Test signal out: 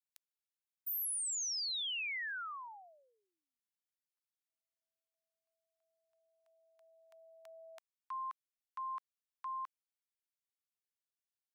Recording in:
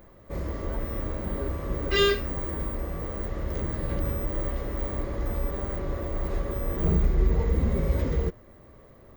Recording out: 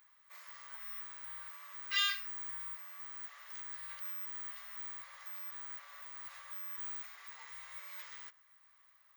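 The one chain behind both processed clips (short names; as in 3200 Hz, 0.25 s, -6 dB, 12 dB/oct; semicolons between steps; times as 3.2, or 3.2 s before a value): Bessel high-pass 1700 Hz, order 6; gain -4 dB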